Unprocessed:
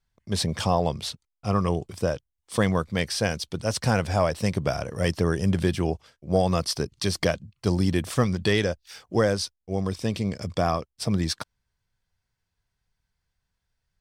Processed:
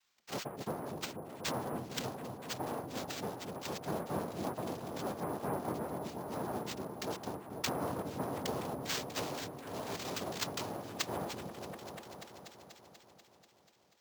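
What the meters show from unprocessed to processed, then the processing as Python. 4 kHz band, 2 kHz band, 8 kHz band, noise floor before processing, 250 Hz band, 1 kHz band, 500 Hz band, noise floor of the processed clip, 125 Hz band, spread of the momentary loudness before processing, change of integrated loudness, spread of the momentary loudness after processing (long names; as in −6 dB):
−10.5 dB, −13.0 dB, −9.0 dB, −82 dBFS, −14.0 dB, −9.0 dB, −13.5 dB, −67 dBFS, −18.5 dB, 6 LU, −13.5 dB, 9 LU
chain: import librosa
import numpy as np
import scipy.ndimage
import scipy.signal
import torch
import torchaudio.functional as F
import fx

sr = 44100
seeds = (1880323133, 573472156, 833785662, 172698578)

p1 = scipy.signal.sosfilt(scipy.signal.cheby2(4, 70, [250.0, 1500.0], 'bandstop', fs=sr, output='sos'), x)
p2 = fx.env_lowpass_down(p1, sr, base_hz=1100.0, full_db=-38.0)
p3 = scipy.signal.sosfilt(scipy.signal.butter(2, 150.0, 'highpass', fs=sr, output='sos'), p2)
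p4 = fx.noise_vocoder(p3, sr, seeds[0], bands=2)
p5 = p4 + fx.echo_opening(p4, sr, ms=243, hz=400, octaves=1, feedback_pct=70, wet_db=-3, dry=0)
p6 = np.repeat(p5[::4], 4)[:len(p5)]
y = F.gain(torch.from_numpy(p6), 16.5).numpy()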